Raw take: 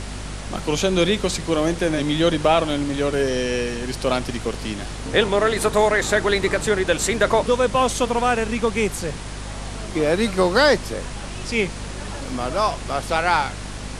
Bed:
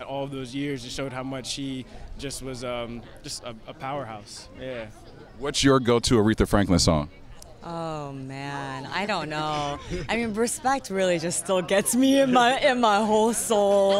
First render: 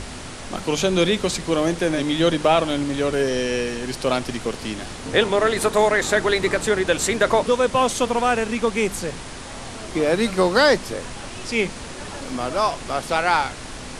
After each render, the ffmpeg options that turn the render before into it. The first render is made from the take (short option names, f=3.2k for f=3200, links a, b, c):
-af "bandreject=f=50:t=h:w=4,bandreject=f=100:t=h:w=4,bandreject=f=150:t=h:w=4,bandreject=f=200:t=h:w=4"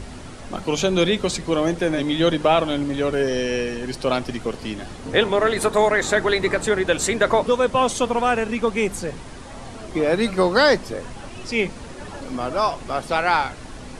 -af "afftdn=nr=8:nf=-35"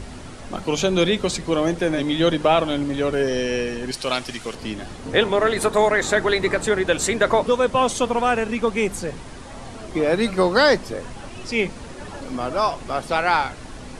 -filter_complex "[0:a]asettb=1/sr,asplit=3[a][b][c];[a]atrim=end=3.914[d];[b]atrim=start=3.91:end=4.55,asetpts=PTS-STARTPTS,afade=t=in:d=0.004:c=qsin,afade=t=out:st=0.636:d=0.004:c=qsin,tiltshelf=f=1.3k:g=-6.5[e];[c]atrim=start=4.546[f];[d][e]acrossfade=d=0.004:c1=hsin:c2=qsin[g];[g][f]acrossfade=d=0.004:c1=qsin:c2=hsin"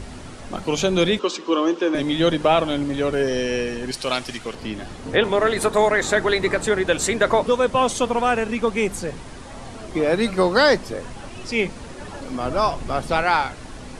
-filter_complex "[0:a]asettb=1/sr,asplit=3[a][b][c];[a]atrim=end=1.194[d];[b]atrim=start=1.19:end=1.95,asetpts=PTS-STARTPTS,afade=t=in:d=0.004:c=qsin,afade=t=out:st=0.756:d=0.004:c=qsin,highpass=f=290:w=0.5412,highpass=f=290:w=1.3066,equalizer=f=330:t=q:w=4:g=5,equalizer=f=690:t=q:w=4:g=-9,equalizer=f=1.1k:t=q:w=4:g=8,equalizer=f=2k:t=q:w=4:g=-9,equalizer=f=2.9k:t=q:w=4:g=5,equalizer=f=4.3k:t=q:w=4:g=-4,lowpass=f=6.2k:w=0.5412,lowpass=f=6.2k:w=1.3066[e];[c]atrim=start=1.946[f];[d][e]acrossfade=d=0.004:c1=hsin:c2=qsin[g];[g][f]acrossfade=d=0.004:c1=qsin:c2=hsin,asettb=1/sr,asplit=3[h][i][j];[h]atrim=end=4.384[k];[i]atrim=start=4.38:end=5.24,asetpts=PTS-STARTPTS,afade=t=in:d=0.004:c=qsin,afade=t=out:st=0.856:d=0.004:c=qsin,acrossover=split=4100[l][m];[m]acompressor=threshold=-46dB:ratio=4:attack=1:release=60[n];[l][n]amix=inputs=2:normalize=0[o];[j]atrim=start=5.236[p];[k][o]acrossfade=d=0.004:c1=hsin:c2=qsin[q];[q][p]acrossfade=d=0.004:c1=qsin:c2=hsin,asettb=1/sr,asplit=3[r][s][t];[r]atrim=end=12.454[u];[s]atrim=start=12.45:end=13.23,asetpts=PTS-STARTPTS,afade=t=in:d=0.004:c=qsin,afade=t=out:st=0.776:d=0.004:c=qsin,lowshelf=f=200:g=8[v];[t]atrim=start=13.226[w];[u][v]acrossfade=d=0.004:c1=hsin:c2=qsin[x];[x][w]acrossfade=d=0.004:c1=qsin:c2=hsin"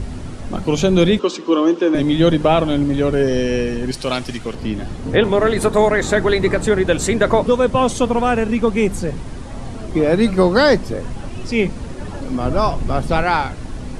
-af "lowshelf=f=350:g=11"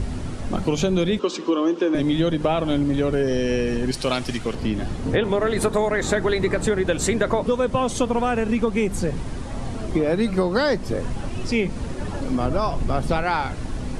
-af "acompressor=threshold=-17dB:ratio=6"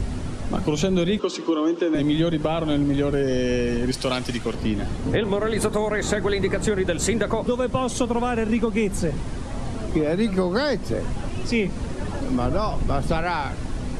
-filter_complex "[0:a]acrossover=split=300|3000[a][b][c];[b]acompressor=threshold=-21dB:ratio=6[d];[a][d][c]amix=inputs=3:normalize=0"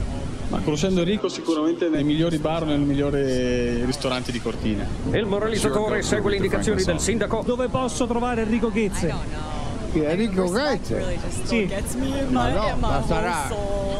-filter_complex "[1:a]volume=-8dB[a];[0:a][a]amix=inputs=2:normalize=0"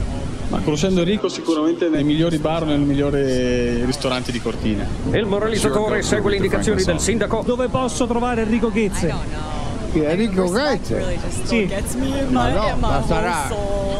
-af "volume=3.5dB"